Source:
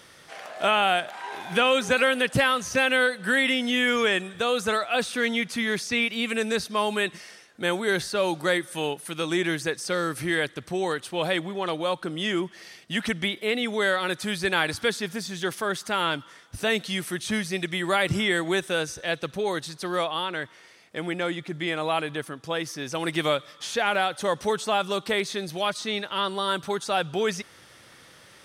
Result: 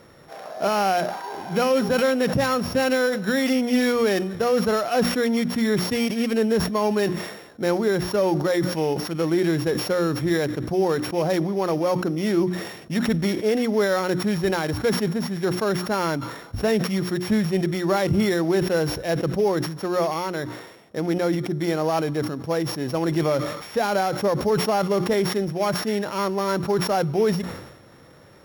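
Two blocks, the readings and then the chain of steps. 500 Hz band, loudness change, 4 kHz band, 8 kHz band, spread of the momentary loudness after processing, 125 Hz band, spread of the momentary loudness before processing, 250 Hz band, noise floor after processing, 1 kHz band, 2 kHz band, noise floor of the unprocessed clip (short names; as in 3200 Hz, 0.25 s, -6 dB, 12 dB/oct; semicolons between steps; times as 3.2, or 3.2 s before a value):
+5.5 dB, +3.0 dB, -4.0 dB, +0.5 dB, 5 LU, +9.0 dB, 9 LU, +7.5 dB, -46 dBFS, +1.5 dB, -4.5 dB, -52 dBFS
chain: sample sorter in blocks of 8 samples; tilt shelf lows +8.5 dB, about 1400 Hz; limiter -12 dBFS, peak gain reduction 6.5 dB; notches 60/120/180/240/300/360 Hz; sustainer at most 61 dB/s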